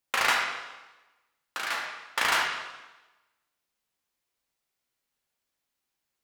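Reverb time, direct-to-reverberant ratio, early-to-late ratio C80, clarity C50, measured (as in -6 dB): 1.1 s, -1.5 dB, 5.5 dB, 3.0 dB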